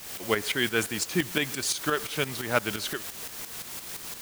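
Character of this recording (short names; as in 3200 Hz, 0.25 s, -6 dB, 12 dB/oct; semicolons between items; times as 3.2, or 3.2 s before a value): a quantiser's noise floor 6-bit, dither triangular; tremolo saw up 5.8 Hz, depth 65%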